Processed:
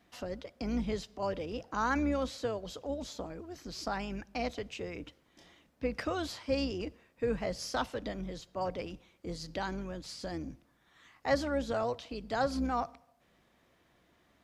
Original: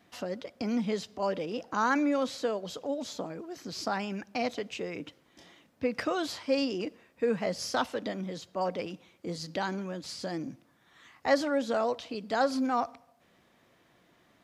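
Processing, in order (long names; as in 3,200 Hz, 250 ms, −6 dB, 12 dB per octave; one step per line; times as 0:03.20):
sub-octave generator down 2 octaves, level −5 dB
level −4 dB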